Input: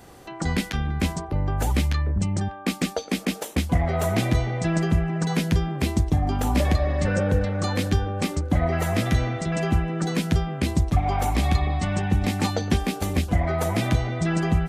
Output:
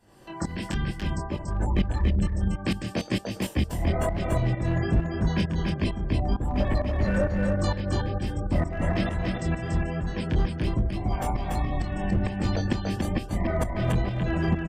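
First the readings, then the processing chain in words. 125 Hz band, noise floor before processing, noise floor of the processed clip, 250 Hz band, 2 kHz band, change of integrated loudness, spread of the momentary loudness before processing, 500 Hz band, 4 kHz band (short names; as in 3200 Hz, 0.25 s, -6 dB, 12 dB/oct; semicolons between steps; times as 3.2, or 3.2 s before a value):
-3.0 dB, -39 dBFS, -39 dBFS, -2.5 dB, -4.0 dB, -3.0 dB, 4 LU, -2.5 dB, -5.5 dB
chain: octaver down 1 oct, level -3 dB; spectral gate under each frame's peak -30 dB strong; ripple EQ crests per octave 1.3, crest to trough 6 dB; chorus 1.2 Hz, delay 19.5 ms, depth 5.9 ms; overloaded stage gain 18 dB; tremolo saw up 2.2 Hz, depth 85%; echo 0.286 s -3.5 dB; gain +2 dB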